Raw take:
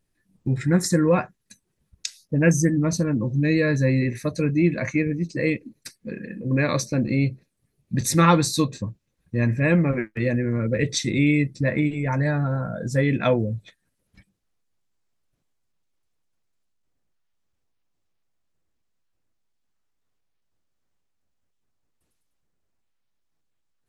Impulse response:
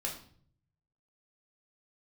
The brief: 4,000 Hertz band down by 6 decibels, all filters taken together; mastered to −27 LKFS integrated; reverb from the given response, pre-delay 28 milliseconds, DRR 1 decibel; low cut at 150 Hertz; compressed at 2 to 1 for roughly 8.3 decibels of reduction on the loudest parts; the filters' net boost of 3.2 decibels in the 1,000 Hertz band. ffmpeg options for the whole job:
-filter_complex "[0:a]highpass=150,equalizer=frequency=1000:width_type=o:gain=4.5,equalizer=frequency=4000:width_type=o:gain=-7.5,acompressor=threshold=-26dB:ratio=2,asplit=2[link_01][link_02];[1:a]atrim=start_sample=2205,adelay=28[link_03];[link_02][link_03]afir=irnorm=-1:irlink=0,volume=-3dB[link_04];[link_01][link_04]amix=inputs=2:normalize=0,volume=-1.5dB"

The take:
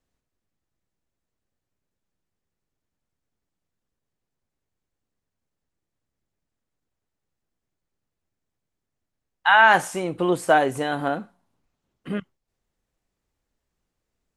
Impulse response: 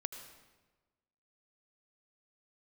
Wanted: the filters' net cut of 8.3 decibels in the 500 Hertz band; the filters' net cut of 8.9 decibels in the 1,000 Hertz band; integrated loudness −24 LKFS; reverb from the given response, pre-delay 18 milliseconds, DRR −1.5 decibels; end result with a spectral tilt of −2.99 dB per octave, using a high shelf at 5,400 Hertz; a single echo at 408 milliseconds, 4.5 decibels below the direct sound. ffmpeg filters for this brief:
-filter_complex "[0:a]equalizer=frequency=500:width_type=o:gain=-9,equalizer=frequency=1000:width_type=o:gain=-8.5,highshelf=frequency=5400:gain=5.5,aecho=1:1:408:0.596,asplit=2[link_01][link_02];[1:a]atrim=start_sample=2205,adelay=18[link_03];[link_02][link_03]afir=irnorm=-1:irlink=0,volume=2.5dB[link_04];[link_01][link_04]amix=inputs=2:normalize=0,volume=-4dB"

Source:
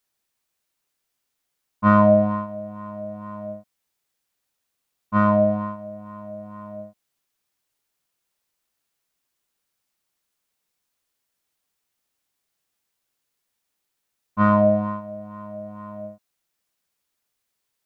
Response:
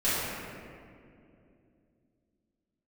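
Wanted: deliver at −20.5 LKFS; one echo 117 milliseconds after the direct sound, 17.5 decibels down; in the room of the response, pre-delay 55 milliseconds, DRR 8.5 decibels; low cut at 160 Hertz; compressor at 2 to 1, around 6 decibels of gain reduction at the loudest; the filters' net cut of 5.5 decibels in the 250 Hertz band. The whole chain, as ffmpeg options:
-filter_complex "[0:a]highpass=160,equalizer=frequency=250:width_type=o:gain=-5.5,acompressor=threshold=-23dB:ratio=2,aecho=1:1:117:0.133,asplit=2[link_01][link_02];[1:a]atrim=start_sample=2205,adelay=55[link_03];[link_02][link_03]afir=irnorm=-1:irlink=0,volume=-21.5dB[link_04];[link_01][link_04]amix=inputs=2:normalize=0,volume=8.5dB"

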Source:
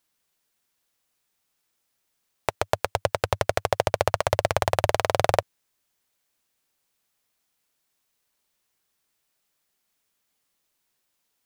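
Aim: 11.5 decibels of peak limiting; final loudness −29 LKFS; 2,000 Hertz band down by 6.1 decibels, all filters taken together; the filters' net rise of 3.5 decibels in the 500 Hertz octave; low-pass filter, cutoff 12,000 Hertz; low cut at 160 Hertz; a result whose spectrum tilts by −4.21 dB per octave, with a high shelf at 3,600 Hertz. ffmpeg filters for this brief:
ffmpeg -i in.wav -af "highpass=160,lowpass=12000,equalizer=frequency=500:width_type=o:gain=5,equalizer=frequency=2000:width_type=o:gain=-7,highshelf=frequency=3600:gain=-5,volume=3.5dB,alimiter=limit=-11dB:level=0:latency=1" out.wav

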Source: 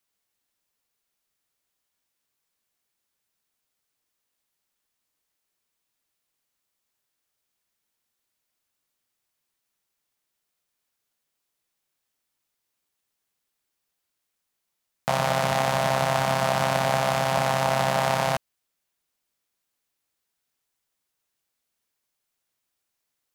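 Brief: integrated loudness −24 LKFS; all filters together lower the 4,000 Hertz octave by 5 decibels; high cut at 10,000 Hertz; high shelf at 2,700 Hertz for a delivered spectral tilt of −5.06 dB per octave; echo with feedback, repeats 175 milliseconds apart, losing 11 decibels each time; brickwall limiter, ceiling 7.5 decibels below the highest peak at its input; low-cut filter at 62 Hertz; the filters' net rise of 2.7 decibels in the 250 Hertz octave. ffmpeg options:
ffmpeg -i in.wav -af "highpass=62,lowpass=10000,equalizer=frequency=250:width_type=o:gain=4,highshelf=frequency=2700:gain=-3,equalizer=frequency=4000:width_type=o:gain=-4,alimiter=limit=-16dB:level=0:latency=1,aecho=1:1:175|350|525:0.282|0.0789|0.0221,volume=3.5dB" out.wav

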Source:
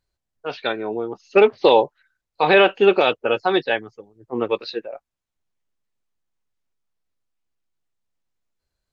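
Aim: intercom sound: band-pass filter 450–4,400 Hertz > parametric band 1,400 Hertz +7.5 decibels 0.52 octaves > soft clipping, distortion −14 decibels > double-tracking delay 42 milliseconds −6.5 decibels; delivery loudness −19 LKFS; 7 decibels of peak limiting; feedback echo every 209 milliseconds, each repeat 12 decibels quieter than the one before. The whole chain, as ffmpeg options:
ffmpeg -i in.wav -filter_complex "[0:a]alimiter=limit=-9.5dB:level=0:latency=1,highpass=450,lowpass=4400,equalizer=frequency=1400:width_type=o:width=0.52:gain=7.5,aecho=1:1:209|418|627:0.251|0.0628|0.0157,asoftclip=threshold=-15dB,asplit=2[link_01][link_02];[link_02]adelay=42,volume=-6.5dB[link_03];[link_01][link_03]amix=inputs=2:normalize=0,volume=6dB" out.wav

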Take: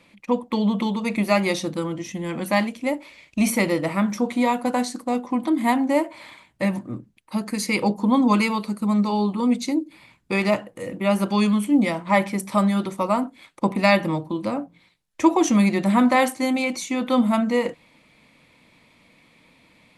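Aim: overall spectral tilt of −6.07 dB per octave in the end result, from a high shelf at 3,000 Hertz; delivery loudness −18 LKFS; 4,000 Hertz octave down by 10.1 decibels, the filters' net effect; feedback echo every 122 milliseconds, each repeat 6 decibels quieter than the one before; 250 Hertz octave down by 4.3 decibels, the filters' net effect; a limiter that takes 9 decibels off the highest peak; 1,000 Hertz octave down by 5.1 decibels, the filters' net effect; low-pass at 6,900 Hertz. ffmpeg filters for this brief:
ffmpeg -i in.wav -af "lowpass=6900,equalizer=frequency=250:width_type=o:gain=-5,equalizer=frequency=1000:width_type=o:gain=-5,highshelf=frequency=3000:gain=-7.5,equalizer=frequency=4000:width_type=o:gain=-6.5,alimiter=limit=-18.5dB:level=0:latency=1,aecho=1:1:122|244|366|488|610|732:0.501|0.251|0.125|0.0626|0.0313|0.0157,volume=10dB" out.wav

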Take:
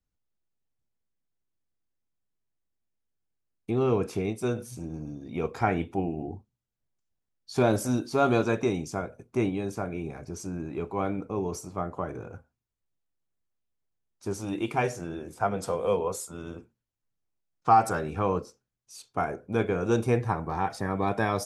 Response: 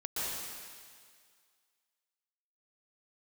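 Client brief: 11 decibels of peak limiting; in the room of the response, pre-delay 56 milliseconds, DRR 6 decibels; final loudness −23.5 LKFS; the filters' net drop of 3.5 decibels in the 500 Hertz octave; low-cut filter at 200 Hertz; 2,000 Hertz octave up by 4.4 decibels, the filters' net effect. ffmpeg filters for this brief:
-filter_complex "[0:a]highpass=200,equalizer=frequency=500:width_type=o:gain=-4.5,equalizer=frequency=2000:width_type=o:gain=6.5,alimiter=limit=-20.5dB:level=0:latency=1,asplit=2[link_01][link_02];[1:a]atrim=start_sample=2205,adelay=56[link_03];[link_02][link_03]afir=irnorm=-1:irlink=0,volume=-11dB[link_04];[link_01][link_04]amix=inputs=2:normalize=0,volume=10dB"

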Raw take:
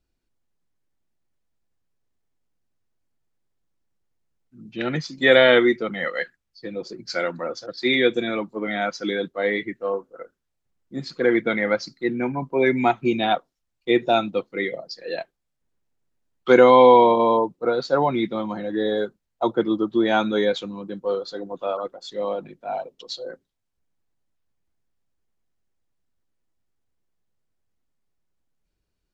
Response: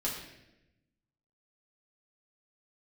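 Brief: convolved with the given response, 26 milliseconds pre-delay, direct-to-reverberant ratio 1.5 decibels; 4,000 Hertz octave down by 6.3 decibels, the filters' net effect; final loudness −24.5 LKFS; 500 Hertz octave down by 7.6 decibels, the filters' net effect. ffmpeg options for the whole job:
-filter_complex "[0:a]equalizer=frequency=500:width_type=o:gain=-9,equalizer=frequency=4000:width_type=o:gain=-7.5,asplit=2[link_01][link_02];[1:a]atrim=start_sample=2205,adelay=26[link_03];[link_02][link_03]afir=irnorm=-1:irlink=0,volume=-6dB[link_04];[link_01][link_04]amix=inputs=2:normalize=0,volume=-1dB"

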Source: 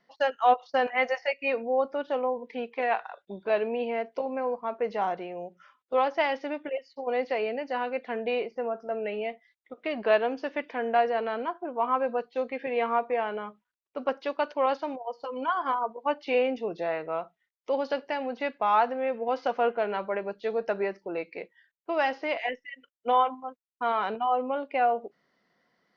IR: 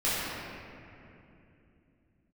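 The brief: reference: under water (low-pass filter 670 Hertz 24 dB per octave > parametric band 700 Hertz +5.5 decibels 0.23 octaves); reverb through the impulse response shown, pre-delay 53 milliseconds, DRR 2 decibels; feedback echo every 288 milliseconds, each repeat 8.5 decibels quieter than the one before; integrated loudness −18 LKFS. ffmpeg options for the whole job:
-filter_complex "[0:a]aecho=1:1:288|576|864|1152:0.376|0.143|0.0543|0.0206,asplit=2[link_01][link_02];[1:a]atrim=start_sample=2205,adelay=53[link_03];[link_02][link_03]afir=irnorm=-1:irlink=0,volume=-14.5dB[link_04];[link_01][link_04]amix=inputs=2:normalize=0,lowpass=frequency=670:width=0.5412,lowpass=frequency=670:width=1.3066,equalizer=frequency=700:width_type=o:width=0.23:gain=5.5,volume=10.5dB"

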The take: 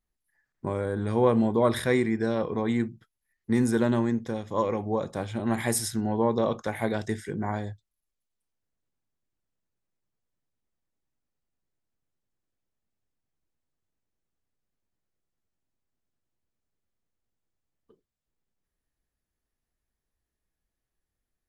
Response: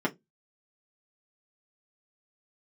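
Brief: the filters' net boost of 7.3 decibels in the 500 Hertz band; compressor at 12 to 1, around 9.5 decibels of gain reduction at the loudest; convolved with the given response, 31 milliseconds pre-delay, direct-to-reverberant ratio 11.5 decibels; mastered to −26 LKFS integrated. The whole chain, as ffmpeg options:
-filter_complex "[0:a]equalizer=frequency=500:width_type=o:gain=8.5,acompressor=threshold=-19dB:ratio=12,asplit=2[link_01][link_02];[1:a]atrim=start_sample=2205,adelay=31[link_03];[link_02][link_03]afir=irnorm=-1:irlink=0,volume=-21dB[link_04];[link_01][link_04]amix=inputs=2:normalize=0,volume=-0.5dB"

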